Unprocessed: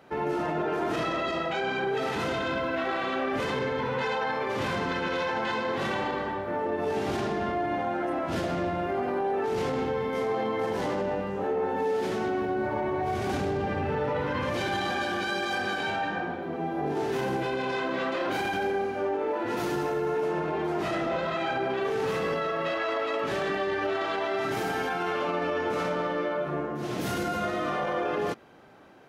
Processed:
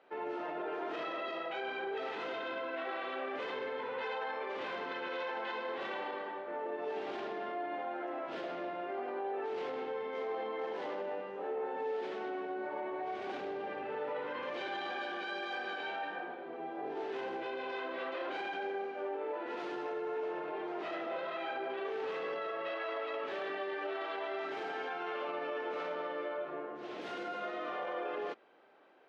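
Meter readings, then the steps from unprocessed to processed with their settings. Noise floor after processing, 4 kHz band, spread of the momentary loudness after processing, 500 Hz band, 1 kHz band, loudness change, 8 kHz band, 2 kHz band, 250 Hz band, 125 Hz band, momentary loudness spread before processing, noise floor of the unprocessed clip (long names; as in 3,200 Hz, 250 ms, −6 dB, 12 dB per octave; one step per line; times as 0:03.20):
−44 dBFS, −10.0 dB, 2 LU, −9.0 dB, −9.5 dB, −9.5 dB, below −20 dB, −9.0 dB, −13.5 dB, below −25 dB, 1 LU, −33 dBFS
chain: Chebyshev band-pass filter 410–3,300 Hz, order 2
level −8.5 dB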